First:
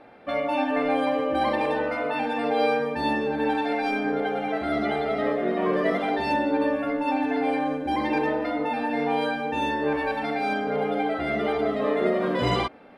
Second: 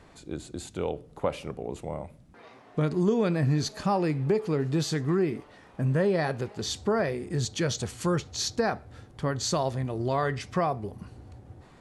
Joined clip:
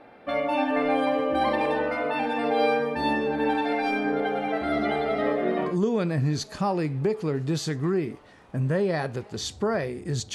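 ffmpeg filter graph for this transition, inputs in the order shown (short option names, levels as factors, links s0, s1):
-filter_complex "[0:a]apad=whole_dur=10.34,atrim=end=10.34,atrim=end=5.78,asetpts=PTS-STARTPTS[s0];[1:a]atrim=start=2.83:end=7.59,asetpts=PTS-STARTPTS[s1];[s0][s1]acrossfade=d=0.2:c1=tri:c2=tri"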